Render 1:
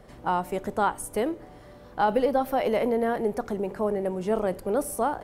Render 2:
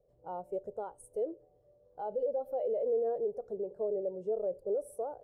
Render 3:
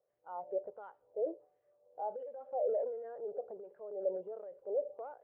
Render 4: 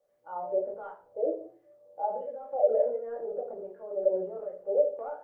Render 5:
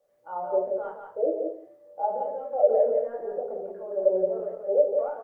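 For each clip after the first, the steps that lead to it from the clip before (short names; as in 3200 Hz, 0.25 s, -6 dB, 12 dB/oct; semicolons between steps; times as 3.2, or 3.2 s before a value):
graphic EQ 125/250/500/1000/2000/8000 Hz +4/-8/+12/-4/-7/+4 dB; limiter -16 dBFS, peak gain reduction 11 dB; spectral expander 1.5:1; gain -8 dB
wah 1.4 Hz 600–1900 Hz, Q 2.4; transient shaper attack 0 dB, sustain +6 dB; inverse Chebyshev low-pass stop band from 6300 Hz, stop band 40 dB; gain +3 dB
reverb RT60 0.40 s, pre-delay 3 ms, DRR -2.5 dB; gain +3 dB
echo 0.174 s -5 dB; gain +3.5 dB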